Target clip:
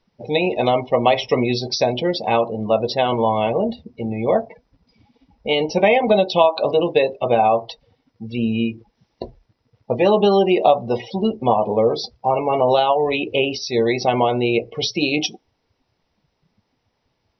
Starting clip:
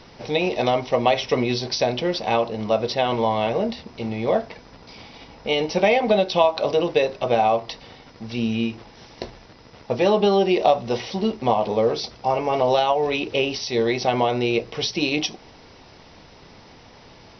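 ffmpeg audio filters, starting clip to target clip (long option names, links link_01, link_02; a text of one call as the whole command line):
ffmpeg -i in.wav -af "afftdn=noise_reduction=27:noise_floor=-31,volume=3dB" out.wav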